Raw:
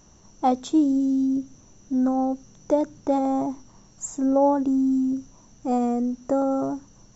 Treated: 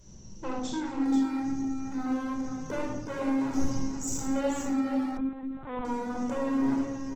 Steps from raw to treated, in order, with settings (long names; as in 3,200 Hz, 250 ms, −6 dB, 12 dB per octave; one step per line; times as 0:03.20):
parametric band 1,100 Hz −10 dB 1.7 octaves
harmonic and percussive parts rebalanced percussive −4 dB
0:06.35–0:06.75: low-shelf EQ 200 Hz +8 dB
brickwall limiter −22.5 dBFS, peak gain reduction 9 dB
0:03.40–0:04.37: transient designer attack −1 dB, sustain +12 dB
gain into a clipping stage and back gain 34.5 dB
multi-tap delay 77/210/484 ms −8.5/−18/−8 dB
rectangular room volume 2,000 cubic metres, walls furnished, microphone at 5 metres
0:05.17–0:05.85: linear-prediction vocoder at 8 kHz pitch kept
Opus 16 kbit/s 48,000 Hz